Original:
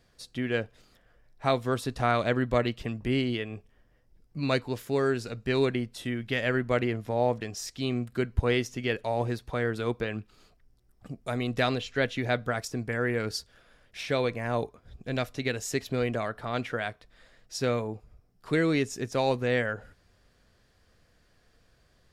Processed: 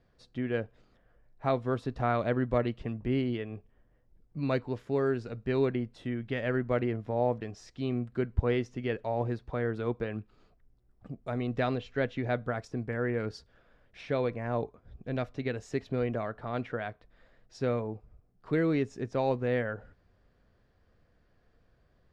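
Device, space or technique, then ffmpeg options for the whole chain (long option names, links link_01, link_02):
through cloth: -af "lowpass=6500,highshelf=frequency=2400:gain=-14.5,volume=-1.5dB"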